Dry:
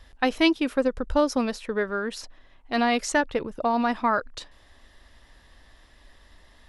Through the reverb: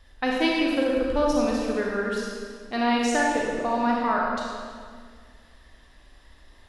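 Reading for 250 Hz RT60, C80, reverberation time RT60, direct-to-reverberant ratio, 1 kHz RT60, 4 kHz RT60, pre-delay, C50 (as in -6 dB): 2.2 s, 0.5 dB, 1.9 s, -3.0 dB, 1.8 s, 1.5 s, 32 ms, -1.5 dB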